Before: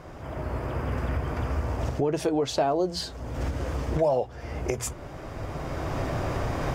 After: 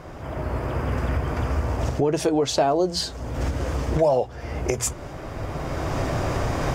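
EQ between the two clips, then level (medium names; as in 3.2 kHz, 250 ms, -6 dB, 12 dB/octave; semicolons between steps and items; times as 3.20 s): dynamic bell 6.9 kHz, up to +4 dB, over -51 dBFS, Q 0.95; +4.0 dB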